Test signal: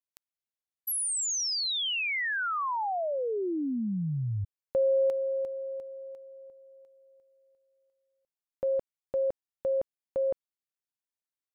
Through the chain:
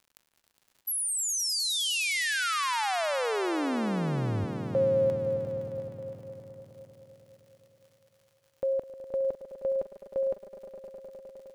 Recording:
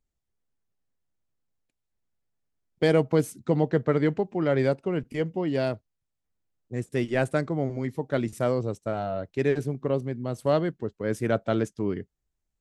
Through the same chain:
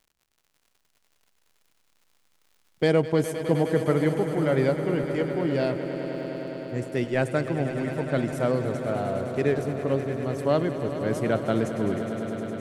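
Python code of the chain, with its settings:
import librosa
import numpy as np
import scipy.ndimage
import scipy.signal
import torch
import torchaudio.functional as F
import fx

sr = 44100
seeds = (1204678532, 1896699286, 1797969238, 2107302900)

y = fx.dmg_crackle(x, sr, seeds[0], per_s=100.0, level_db=-50.0)
y = fx.echo_swell(y, sr, ms=103, loudest=5, wet_db=-13.0)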